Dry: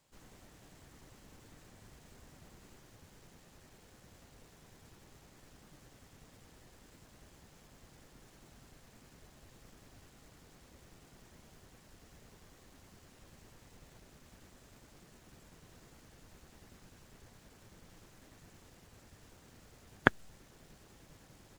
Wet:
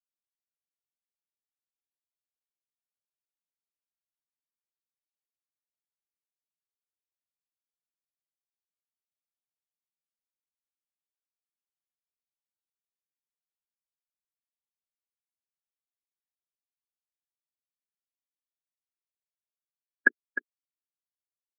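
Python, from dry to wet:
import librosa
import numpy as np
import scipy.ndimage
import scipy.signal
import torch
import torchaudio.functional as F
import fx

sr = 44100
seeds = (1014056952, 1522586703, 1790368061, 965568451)

y = fx.bandpass_edges(x, sr, low_hz=250.0, high_hz=5700.0)
y = fx.leveller(y, sr, passes=1)
y = fx.hum_notches(y, sr, base_hz=60, count=7)
y = fx.level_steps(y, sr, step_db=21)
y = y + 10.0 ** (-3.0 / 20.0) * np.pad(y, (int(306 * sr / 1000.0), 0))[:len(y)]
y = fx.spectral_expand(y, sr, expansion=4.0)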